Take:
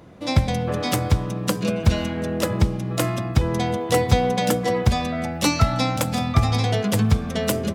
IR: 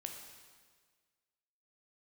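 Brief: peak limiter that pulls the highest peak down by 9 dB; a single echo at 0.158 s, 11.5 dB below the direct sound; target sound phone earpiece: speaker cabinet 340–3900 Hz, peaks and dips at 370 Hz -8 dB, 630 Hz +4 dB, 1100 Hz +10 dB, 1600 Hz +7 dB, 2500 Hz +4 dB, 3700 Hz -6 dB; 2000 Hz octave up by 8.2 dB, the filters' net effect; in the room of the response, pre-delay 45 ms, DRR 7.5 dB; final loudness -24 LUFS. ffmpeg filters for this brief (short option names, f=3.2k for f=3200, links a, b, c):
-filter_complex "[0:a]equalizer=f=2k:t=o:g=4.5,alimiter=limit=-12.5dB:level=0:latency=1,aecho=1:1:158:0.266,asplit=2[a][b];[1:a]atrim=start_sample=2205,adelay=45[c];[b][c]afir=irnorm=-1:irlink=0,volume=-5dB[d];[a][d]amix=inputs=2:normalize=0,highpass=340,equalizer=f=370:t=q:w=4:g=-8,equalizer=f=630:t=q:w=4:g=4,equalizer=f=1.1k:t=q:w=4:g=10,equalizer=f=1.6k:t=q:w=4:g=7,equalizer=f=2.5k:t=q:w=4:g=4,equalizer=f=3.7k:t=q:w=4:g=-6,lowpass=f=3.9k:w=0.5412,lowpass=f=3.9k:w=1.3066,volume=-1dB"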